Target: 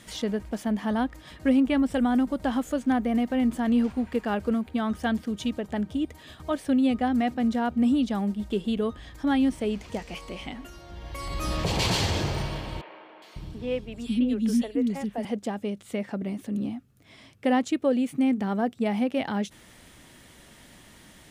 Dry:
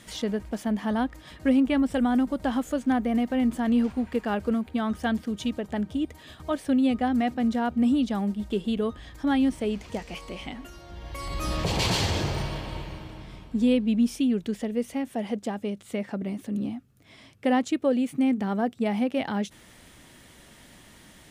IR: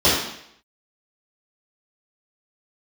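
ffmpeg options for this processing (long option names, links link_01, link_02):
-filter_complex "[0:a]asettb=1/sr,asplit=3[link_01][link_02][link_03];[link_01]atrim=end=12.814[link_04];[link_02]atrim=start=12.81:end=15.25,asetpts=PTS-STARTPTS,afade=type=in:duration=0.004:curve=qsin,afade=type=out:start_time=2.436:duration=0.004:curve=qsin,acrossover=split=360|3000[link_05][link_06][link_07];[link_07]adelay=410[link_08];[link_05]adelay=550[link_09];[link_09][link_06][link_08]amix=inputs=3:normalize=0,atrim=end_sample=107604[link_10];[link_03]atrim=start=15.246[link_11];[link_04][link_10]acrossfade=duration=0.004:curve1=hsin:curve2=qsin[link_12];[link_12][link_11]acrossfade=duration=0.004:curve1=qsin:curve2=hsin"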